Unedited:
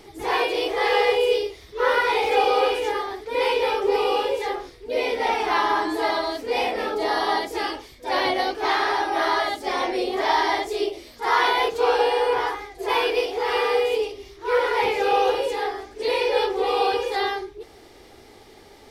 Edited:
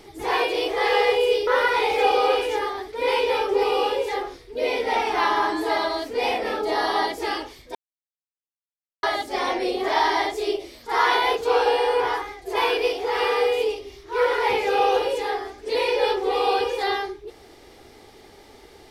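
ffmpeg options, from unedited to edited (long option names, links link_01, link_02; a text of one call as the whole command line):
ffmpeg -i in.wav -filter_complex "[0:a]asplit=4[link_01][link_02][link_03][link_04];[link_01]atrim=end=1.472[link_05];[link_02]atrim=start=1.798:end=8.08,asetpts=PTS-STARTPTS,afade=type=out:start_time=6.278:duration=0.004:curve=hsin[link_06];[link_03]atrim=start=8.08:end=9.36,asetpts=PTS-STARTPTS,volume=0[link_07];[link_04]atrim=start=9.36,asetpts=PTS-STARTPTS,afade=type=in:duration=0.004:curve=hsin[link_08];[link_06][link_07][link_08]concat=n=3:v=0:a=1[link_09];[link_05][link_09]acrossfade=duration=0.004:curve1=hsin:curve2=hsin" out.wav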